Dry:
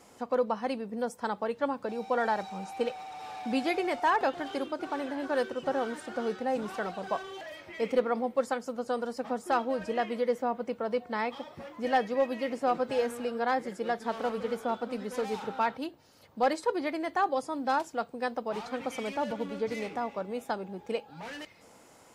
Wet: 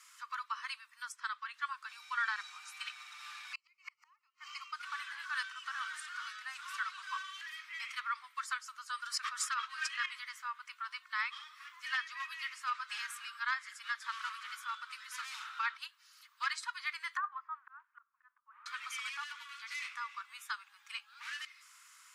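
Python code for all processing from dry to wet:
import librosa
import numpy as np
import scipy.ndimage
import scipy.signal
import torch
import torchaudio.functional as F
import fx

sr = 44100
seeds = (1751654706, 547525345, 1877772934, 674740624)

y = fx.chain(x, sr, fx.highpass(hz=980.0, slope=12),
    fx.air_absorb(metres=66.0), at=(1.12, 1.54))
y = fx.chain(y, sr, fx.peak_eq(hz=290.0, db=-4.0, octaves=0.47),
    fx.fixed_phaser(hz=2400.0, stages=8),
    fx.gate_flip(shuts_db=-26.0, range_db=-37), at=(3.53, 4.73))
y = fx.chain(y, sr, fx.peak_eq(hz=860.0, db=-14.0, octaves=0.21),
    fx.sustainer(db_per_s=21.0), at=(8.96, 10.06))
y = fx.chain(y, sr, fx.lowpass(hz=1600.0, slope=24),
    fx.auto_swell(attack_ms=773.0), at=(17.17, 18.66))
y = scipy.signal.sosfilt(scipy.signal.butter(12, 1100.0, 'highpass', fs=sr, output='sos'), y)
y = fx.env_lowpass_down(y, sr, base_hz=1800.0, full_db=-23.0)
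y = fx.over_compress(y, sr, threshold_db=-33.0, ratio=-0.5)
y = F.gain(torch.from_numpy(y), 1.5).numpy()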